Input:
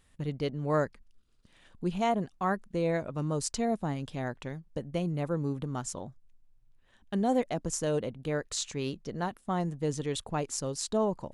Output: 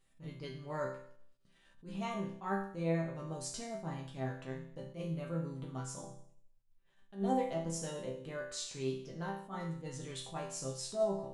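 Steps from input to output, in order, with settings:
resonators tuned to a chord C3 major, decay 0.61 s
level that may rise only so fast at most 200 dB per second
level +11.5 dB

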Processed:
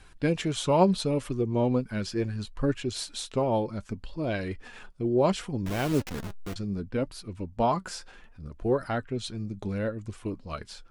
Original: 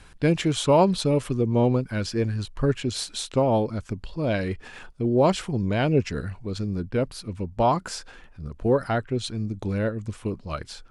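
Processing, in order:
0:05.66–0:06.56: hold until the input has moved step −26 dBFS
flanger 0.69 Hz, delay 2.5 ms, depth 3.4 ms, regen +62%

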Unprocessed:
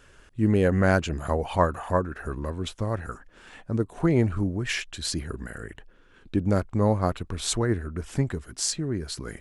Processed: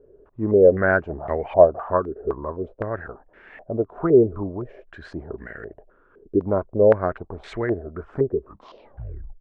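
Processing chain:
turntable brake at the end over 1.07 s
hollow resonant body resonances 410/610 Hz, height 9 dB, ringing for 20 ms
low-pass on a step sequencer 3.9 Hz 430–2,000 Hz
level −5.5 dB

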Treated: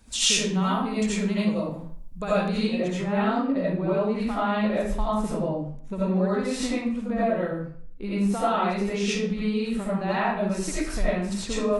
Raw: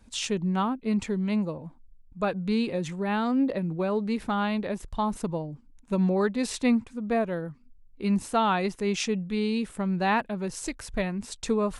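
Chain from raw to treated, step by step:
downward compressor, threshold −30 dBFS, peak gain reduction 11 dB
high-shelf EQ 3,400 Hz +7.5 dB, from 0:02.58 −6.5 dB
convolution reverb RT60 0.55 s, pre-delay 45 ms, DRR −9.5 dB

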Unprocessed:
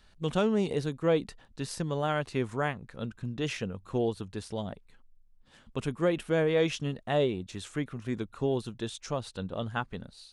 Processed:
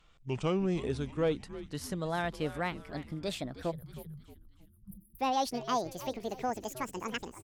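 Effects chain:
gliding playback speed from 78% → 200%
time-frequency box erased 0:03.71–0:05.19, 210–9,100 Hz
in parallel at −11 dB: hard clipping −24 dBFS, distortion −12 dB
on the sum: echo with shifted repeats 314 ms, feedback 45%, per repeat −120 Hz, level −14 dB
level −5.5 dB

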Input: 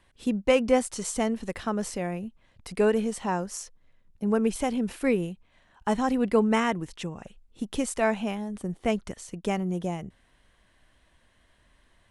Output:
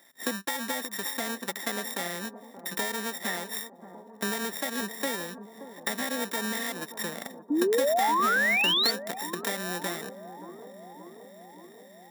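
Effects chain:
samples sorted by size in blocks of 32 samples
high-pass filter 210 Hz 24 dB per octave
high-shelf EQ 6,800 Hz +10.5 dB
brickwall limiter −8.5 dBFS, peak gain reduction 9.5 dB
downward compressor 5 to 1, threshold −34 dBFS, peak gain reduction 13.5 dB
formants moved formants +5 semitones
sound drawn into the spectrogram rise, 0:07.50–0:08.91, 280–4,600 Hz −30 dBFS
on a send: bucket-brigade delay 576 ms, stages 4,096, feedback 72%, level −12 dB
on the sum: level +5.5 dB

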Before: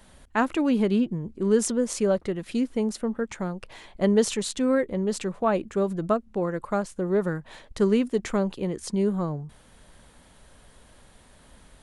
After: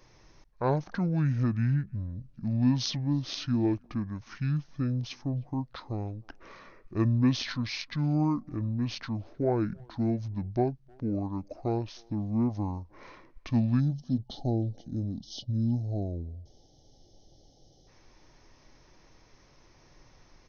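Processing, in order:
gain on a spectral selection 0:07.96–0:10.32, 1,500–5,000 Hz −25 dB
wrong playback speed 78 rpm record played at 45 rpm
far-end echo of a speakerphone 310 ms, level −28 dB
level −4.5 dB

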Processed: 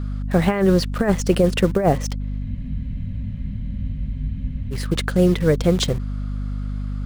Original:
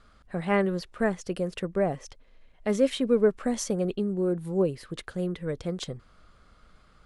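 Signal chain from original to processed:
in parallel at −6.5 dB: bit reduction 7 bits
on the sum: mains hum 50 Hz, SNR 11 dB
compressor whose output falls as the input rises −23 dBFS, ratio −0.5
frozen spectrum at 0:02.46, 2.27 s
level +8.5 dB

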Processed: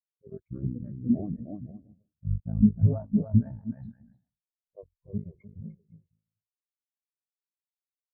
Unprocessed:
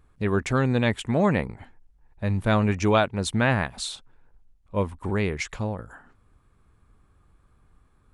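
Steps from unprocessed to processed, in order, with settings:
sub-harmonics by changed cycles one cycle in 2, muted
0:01.32–0:03.08: Chebyshev low-pass filter 5,400 Hz, order 3
bouncing-ball delay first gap 300 ms, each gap 0.7×, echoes 5
boost into a limiter +13.5 dB
every bin expanded away from the loudest bin 4 to 1
level −8 dB

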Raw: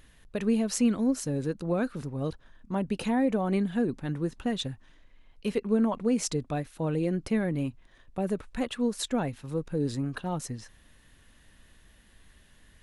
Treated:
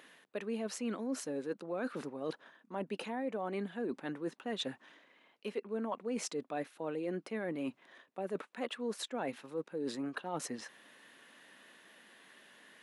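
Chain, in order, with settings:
high-pass filter 180 Hz 24 dB per octave
bass and treble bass −13 dB, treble −8 dB
reversed playback
downward compressor 5 to 1, threshold −41 dBFS, peak gain reduction 15.5 dB
reversed playback
level +5.5 dB

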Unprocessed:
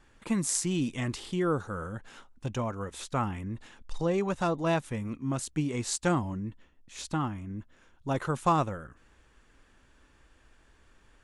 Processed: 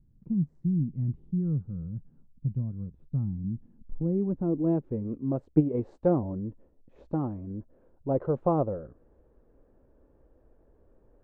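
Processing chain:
0:05.33–0:05.80: transient designer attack +8 dB, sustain −4 dB
low-pass filter sweep 160 Hz → 530 Hz, 0:03.28–0:05.39

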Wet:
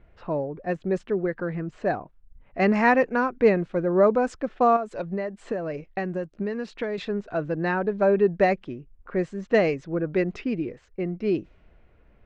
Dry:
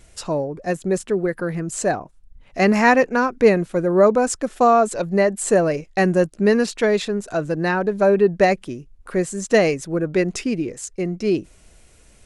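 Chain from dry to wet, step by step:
low-pass filter 3,100 Hz 12 dB per octave
low-pass that shuts in the quiet parts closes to 1,800 Hz, open at −13 dBFS
0:04.76–0:06.98: downward compressor 10 to 1, threshold −21 dBFS, peak gain reduction 10.5 dB
level −4.5 dB

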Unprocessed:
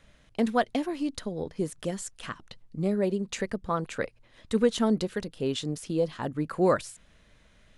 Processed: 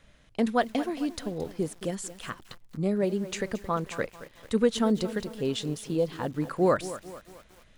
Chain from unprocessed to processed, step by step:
feedback echo at a low word length 222 ms, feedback 55%, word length 7 bits, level −14 dB

